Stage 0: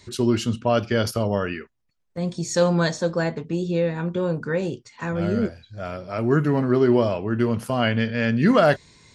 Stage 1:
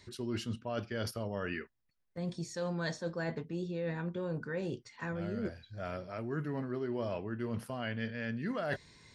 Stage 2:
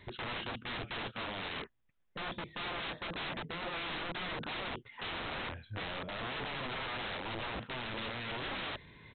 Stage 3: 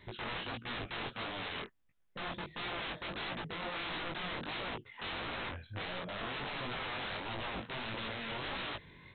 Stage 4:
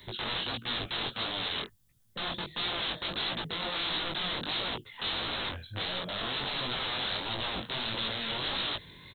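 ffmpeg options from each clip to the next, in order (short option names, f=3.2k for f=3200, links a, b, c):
-af "superequalizer=11b=1.41:15b=0.631,areverse,acompressor=threshold=-27dB:ratio=6,areverse,volume=-6.5dB"
-af "alimiter=level_in=5.5dB:limit=-24dB:level=0:latency=1:release=61,volume=-5.5dB,aresample=8000,aeval=exprs='(mod(94.4*val(0)+1,2)-1)/94.4':c=same,aresample=44100,volume=5dB"
-af "flanger=delay=16.5:depth=6.5:speed=1.5,volume=2.5dB"
-filter_complex "[0:a]acrossover=split=170|530[a][b][c];[a]aecho=1:1:889:0.0668[d];[c]aexciter=amount=4:drive=5.7:freq=3.4k[e];[d][b][e]amix=inputs=3:normalize=0,volume=3.5dB"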